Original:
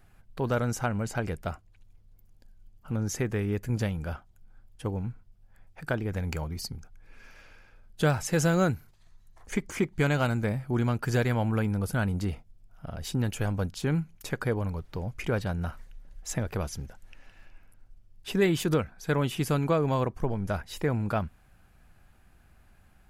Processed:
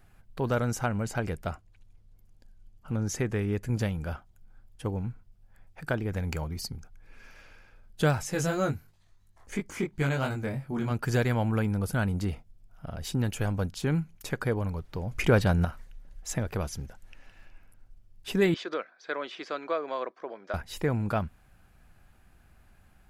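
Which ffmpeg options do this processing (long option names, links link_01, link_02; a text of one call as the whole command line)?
ffmpeg -i in.wav -filter_complex "[0:a]asettb=1/sr,asplit=3[link_01][link_02][link_03];[link_01]atrim=end=1.474[link_04];[link_02]atrim=start=1.47:end=3.69,asetpts=PTS-STARTPTS,afade=type=in:duration=0.004:curve=qsin,afade=type=out:start_time=2.216:duration=0.004:curve=qsin,lowpass=12000[link_05];[link_03]atrim=start=3.686[link_06];[link_04][link_05]acrossfade=duration=0.004:curve1=hsin:curve2=qsin[link_07];[link_07][link_06]acrossfade=duration=0.004:curve1=qsin:curve2=hsin,asplit=3[link_08][link_09][link_10];[link_08]afade=type=out:start_time=8.23:duration=0.02[link_11];[link_09]flanger=delay=19.5:depth=3.1:speed=2.9,afade=type=in:start_time=8.23:duration=0.02,afade=type=out:start_time=10.9:duration=0.02[link_12];[link_10]afade=type=in:start_time=10.9:duration=0.02[link_13];[link_11][link_12][link_13]amix=inputs=3:normalize=0,asettb=1/sr,asplit=3[link_14][link_15][link_16];[link_14]atrim=end=15.114[link_17];[link_15]atrim=start=15.11:end=15.65,asetpts=PTS-STARTPTS,afade=type=in:duration=0.004:curve=qsin,afade=type=out:start_time=0.536:duration=0.004:curve=qsin,acontrast=80[link_18];[link_16]atrim=start=15.646[link_19];[link_17][link_18]acrossfade=duration=0.004:curve1=hsin:curve2=qsin[link_20];[link_20][link_19]acrossfade=duration=0.004:curve1=qsin:curve2=hsin,asettb=1/sr,asplit=3[link_21][link_22][link_23];[link_21]atrim=end=18.544[link_24];[link_22]atrim=start=18.54:end=20.54,asetpts=PTS-STARTPTS,afade=type=in:duration=0.004:curve=qsin,afade=type=out:start_time=1.996:duration=0.004:curve=qsin,highpass=frequency=400:width=0.5412,highpass=frequency=400:width=1.3066,equalizer=frequency=440:width_type=q:width=4:gain=-6,equalizer=frequency=850:width_type=q:width=4:gain=-9,equalizer=frequency=2800:width_type=q:width=4:gain=-7,lowpass=frequency=4500:width=0.5412,lowpass=frequency=4500:width=1.3066[link_25];[link_23]atrim=start=20.536[link_26];[link_24][link_25]acrossfade=duration=0.004:curve1=hsin:curve2=qsin[link_27];[link_27][link_26]acrossfade=duration=0.004:curve1=qsin:curve2=hsin" out.wav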